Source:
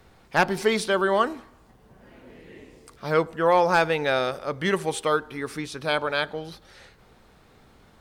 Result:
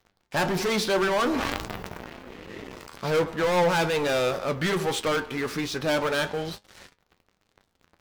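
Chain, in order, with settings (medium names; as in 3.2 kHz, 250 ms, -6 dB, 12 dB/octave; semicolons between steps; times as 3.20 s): peaking EQ 9.1 kHz -12 dB 0.39 oct; waveshaping leveller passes 5; flange 1.2 Hz, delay 9.3 ms, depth 3.1 ms, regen +65%; 1.16–3.05 s: decay stretcher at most 22 dB/s; trim -7 dB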